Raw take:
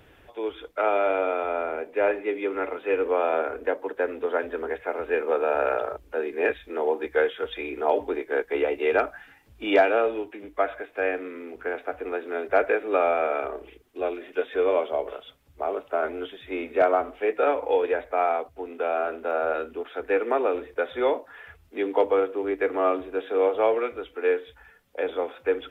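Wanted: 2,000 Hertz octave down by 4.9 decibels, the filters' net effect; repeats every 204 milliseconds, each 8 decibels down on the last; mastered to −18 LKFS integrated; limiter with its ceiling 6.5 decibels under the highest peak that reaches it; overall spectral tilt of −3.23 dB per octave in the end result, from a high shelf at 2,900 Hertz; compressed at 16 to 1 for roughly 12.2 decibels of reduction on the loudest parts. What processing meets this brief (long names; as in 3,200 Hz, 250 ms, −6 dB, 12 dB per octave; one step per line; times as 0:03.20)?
parametric band 2,000 Hz −4 dB
high-shelf EQ 2,900 Hz −7.5 dB
downward compressor 16 to 1, threshold −27 dBFS
brickwall limiter −24 dBFS
repeating echo 204 ms, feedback 40%, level −8 dB
level +16.5 dB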